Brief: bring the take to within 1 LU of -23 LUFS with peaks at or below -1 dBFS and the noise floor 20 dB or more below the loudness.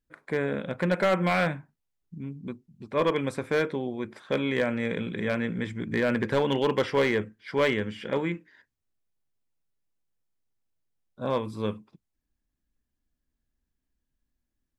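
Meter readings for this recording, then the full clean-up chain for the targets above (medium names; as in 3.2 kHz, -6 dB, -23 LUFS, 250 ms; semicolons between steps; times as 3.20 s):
clipped samples 0.4%; clipping level -16.5 dBFS; loudness -28.0 LUFS; peak level -16.5 dBFS; loudness target -23.0 LUFS
-> clip repair -16.5 dBFS; trim +5 dB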